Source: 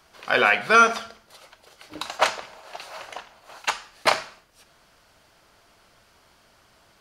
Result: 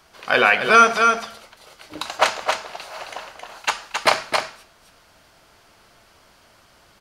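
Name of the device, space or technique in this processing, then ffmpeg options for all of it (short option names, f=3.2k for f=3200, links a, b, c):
ducked delay: -filter_complex "[0:a]asplit=3[a][b][c];[b]adelay=268,volume=-4.5dB[d];[c]apad=whole_len=320862[e];[d][e]sidechaincompress=threshold=-24dB:ratio=8:attack=8.8:release=176[f];[a][f]amix=inputs=2:normalize=0,volume=3dB"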